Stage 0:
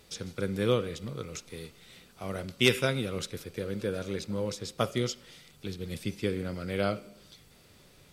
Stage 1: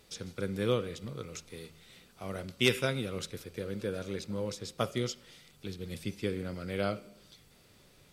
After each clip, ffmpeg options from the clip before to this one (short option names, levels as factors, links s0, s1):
-af "bandreject=f=79.62:t=h:w=4,bandreject=f=159.24:t=h:w=4,volume=0.708"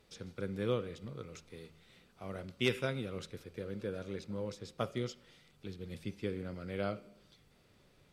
-af "highshelf=f=4500:g=-10,volume=0.631"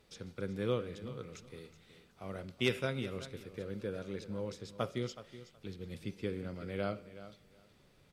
-af "aecho=1:1:372|744:0.188|0.032"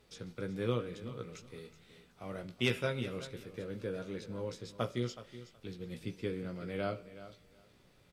-filter_complex "[0:a]asplit=2[s0][s1];[s1]adelay=17,volume=0.473[s2];[s0][s2]amix=inputs=2:normalize=0"